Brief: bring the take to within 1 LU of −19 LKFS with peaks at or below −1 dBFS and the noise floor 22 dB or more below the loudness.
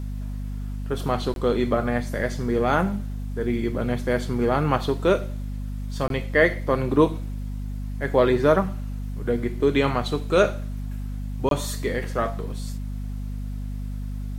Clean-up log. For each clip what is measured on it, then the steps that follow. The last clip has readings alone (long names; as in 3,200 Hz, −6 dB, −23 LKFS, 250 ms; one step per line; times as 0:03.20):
number of dropouts 3; longest dropout 22 ms; mains hum 50 Hz; hum harmonics up to 250 Hz; level of the hum −28 dBFS; integrated loudness −25.0 LKFS; sample peak −5.0 dBFS; target loudness −19.0 LKFS
→ repair the gap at 0:01.34/0:06.08/0:11.49, 22 ms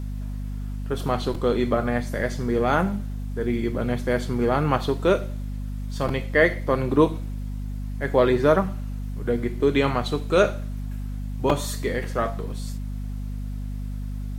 number of dropouts 0; mains hum 50 Hz; hum harmonics up to 250 Hz; level of the hum −28 dBFS
→ hum removal 50 Hz, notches 5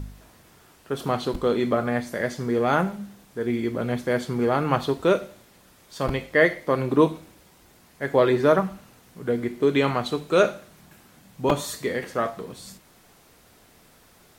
mains hum none found; integrated loudness −24.0 LKFS; sample peak −5.0 dBFS; target loudness −19.0 LKFS
→ level +5 dB
brickwall limiter −1 dBFS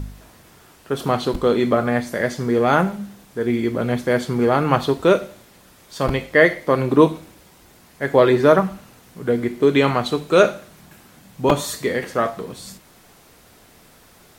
integrated loudness −19.0 LKFS; sample peak −1.0 dBFS; background noise floor −51 dBFS